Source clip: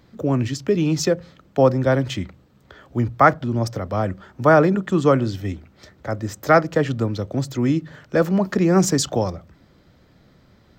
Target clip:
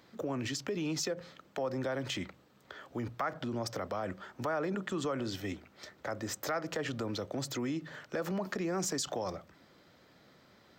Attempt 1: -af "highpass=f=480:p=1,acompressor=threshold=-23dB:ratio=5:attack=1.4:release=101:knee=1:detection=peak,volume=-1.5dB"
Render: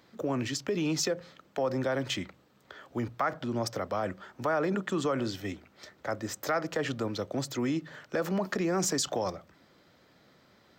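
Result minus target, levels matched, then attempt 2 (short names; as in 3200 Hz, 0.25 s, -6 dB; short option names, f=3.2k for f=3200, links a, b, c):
compressor: peak gain reduction -5 dB
-af "highpass=f=480:p=1,acompressor=threshold=-29.5dB:ratio=5:attack=1.4:release=101:knee=1:detection=peak,volume=-1.5dB"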